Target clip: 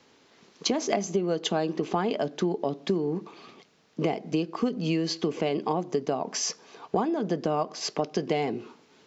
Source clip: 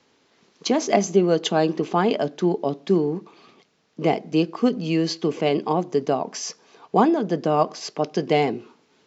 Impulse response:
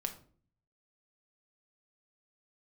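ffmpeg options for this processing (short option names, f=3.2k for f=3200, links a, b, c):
-af "acompressor=threshold=-26dB:ratio=6,volume=2.5dB"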